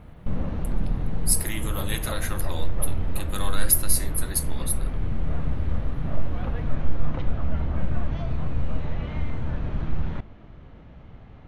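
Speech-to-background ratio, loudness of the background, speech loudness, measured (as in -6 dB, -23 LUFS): 3.5 dB, -31.0 LUFS, -27.5 LUFS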